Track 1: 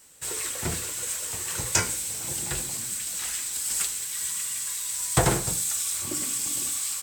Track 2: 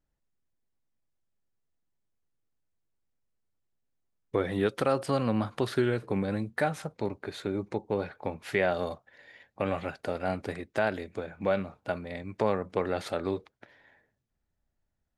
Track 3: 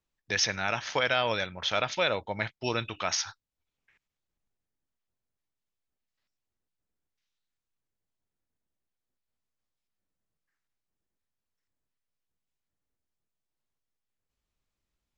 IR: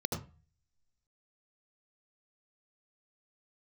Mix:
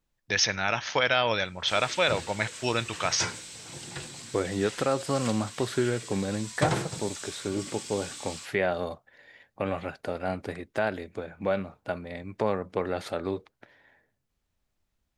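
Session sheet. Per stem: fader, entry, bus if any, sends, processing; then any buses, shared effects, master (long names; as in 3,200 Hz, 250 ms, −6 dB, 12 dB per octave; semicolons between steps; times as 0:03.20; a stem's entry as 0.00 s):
−4.0 dB, 1.45 s, no send, Chebyshev band-pass filter 120–4,500 Hz, order 2
0.0 dB, 0.00 s, no send, no processing
+2.5 dB, 0.00 s, no send, no processing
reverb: not used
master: no processing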